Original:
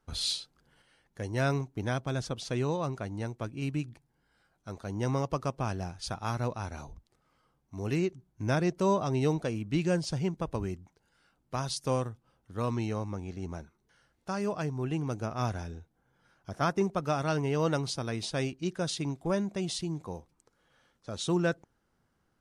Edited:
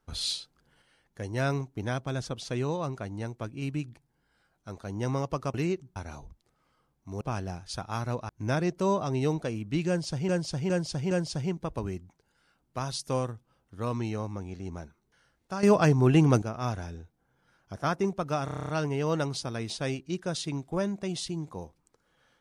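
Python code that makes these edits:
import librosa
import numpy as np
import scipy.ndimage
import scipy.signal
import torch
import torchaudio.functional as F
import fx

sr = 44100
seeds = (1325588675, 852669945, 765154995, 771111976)

y = fx.edit(x, sr, fx.swap(start_s=5.54, length_s=1.08, other_s=7.87, other_length_s=0.42),
    fx.repeat(start_s=9.88, length_s=0.41, count=4),
    fx.clip_gain(start_s=14.4, length_s=0.79, db=11.5),
    fx.stutter(start_s=17.22, slice_s=0.03, count=9), tone=tone)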